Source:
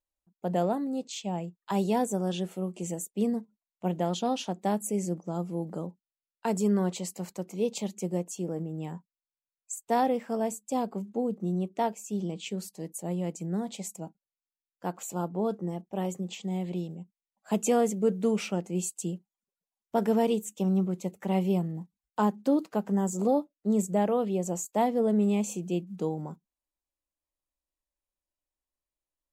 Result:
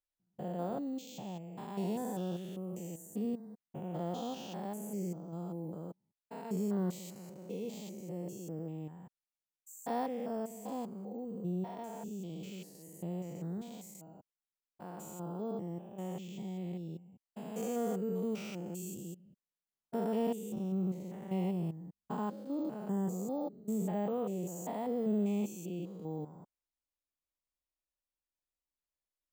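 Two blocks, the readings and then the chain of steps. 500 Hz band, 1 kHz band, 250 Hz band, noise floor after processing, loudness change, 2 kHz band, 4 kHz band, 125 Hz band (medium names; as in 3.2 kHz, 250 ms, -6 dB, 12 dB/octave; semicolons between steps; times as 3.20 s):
-9.5 dB, -11.0 dB, -8.0 dB, under -85 dBFS, -8.5 dB, -11.0 dB, -11.0 dB, -7.0 dB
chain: spectrogram pixelated in time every 200 ms; careless resampling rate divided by 2×, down none, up hold; trim -6 dB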